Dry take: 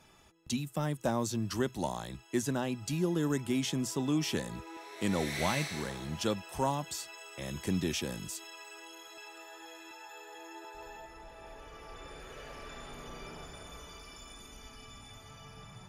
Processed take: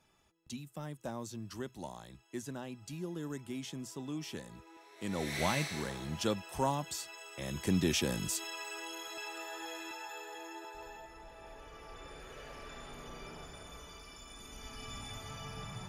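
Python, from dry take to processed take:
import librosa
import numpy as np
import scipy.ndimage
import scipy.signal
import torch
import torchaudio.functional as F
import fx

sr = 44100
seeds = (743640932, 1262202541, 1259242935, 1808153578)

y = fx.gain(x, sr, db=fx.line((4.95, -10.0), (5.35, -1.0), (7.35, -1.0), (8.43, 6.0), (9.8, 6.0), (11.0, -2.0), (14.27, -2.0), (14.94, 6.0)))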